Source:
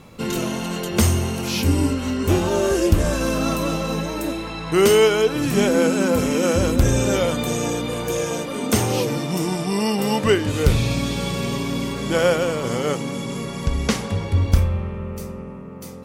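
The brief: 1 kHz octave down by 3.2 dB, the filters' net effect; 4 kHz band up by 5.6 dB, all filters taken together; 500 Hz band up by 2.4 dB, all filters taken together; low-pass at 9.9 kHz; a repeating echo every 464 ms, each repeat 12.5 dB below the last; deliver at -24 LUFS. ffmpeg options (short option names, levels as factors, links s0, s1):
-af "lowpass=9900,equalizer=f=500:t=o:g=4,equalizer=f=1000:t=o:g=-6,equalizer=f=4000:t=o:g=8,aecho=1:1:464|928|1392:0.237|0.0569|0.0137,volume=0.562"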